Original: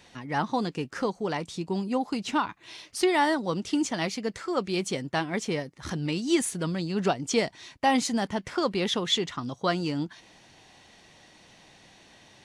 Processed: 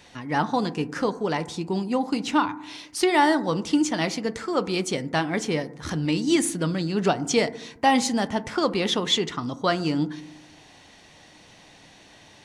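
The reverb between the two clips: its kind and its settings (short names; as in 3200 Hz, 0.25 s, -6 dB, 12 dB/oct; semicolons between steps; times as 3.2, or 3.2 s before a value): FDN reverb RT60 0.77 s, low-frequency decay 1.4×, high-frequency decay 0.25×, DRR 12.5 dB; gain +3.5 dB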